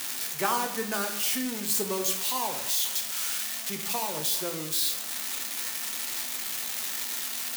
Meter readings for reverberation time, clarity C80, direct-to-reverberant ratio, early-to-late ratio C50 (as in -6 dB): 0.75 s, 11.5 dB, 4.0 dB, 8.5 dB